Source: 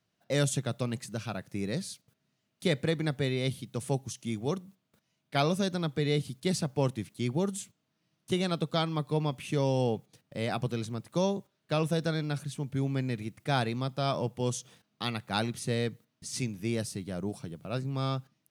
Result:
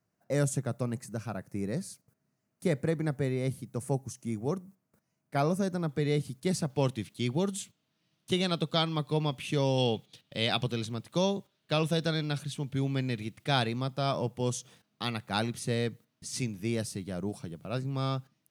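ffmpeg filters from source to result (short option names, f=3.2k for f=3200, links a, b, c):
-af "asetnsamples=n=441:p=0,asendcmd='5.89 equalizer g -6;6.7 equalizer g 5;9.78 equalizer g 14.5;10.64 equalizer g 6;13.67 equalizer g -0.5',equalizer=f=3.4k:t=o:w=0.96:g=-15"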